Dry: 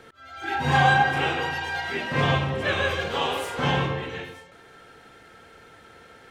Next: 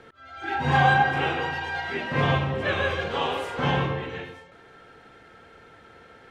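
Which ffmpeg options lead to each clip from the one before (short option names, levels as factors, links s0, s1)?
-af "aemphasis=mode=reproduction:type=50kf"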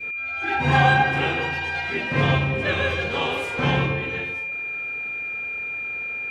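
-af "aeval=exprs='val(0)+0.0282*sin(2*PI*2400*n/s)':c=same,adynamicequalizer=threshold=0.0178:dfrequency=940:dqfactor=0.71:tfrequency=940:tqfactor=0.71:attack=5:release=100:ratio=0.375:range=2.5:mode=cutabove:tftype=bell,volume=1.58"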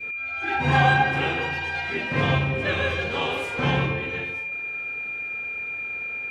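-af "flanger=delay=9.1:depth=3.3:regen=-88:speed=0.56:shape=triangular,volume=1.41"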